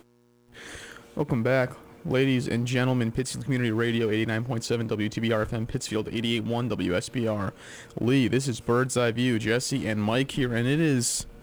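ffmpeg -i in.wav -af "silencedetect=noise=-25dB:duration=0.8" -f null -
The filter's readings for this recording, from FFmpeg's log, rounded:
silence_start: 0.00
silence_end: 1.17 | silence_duration: 1.17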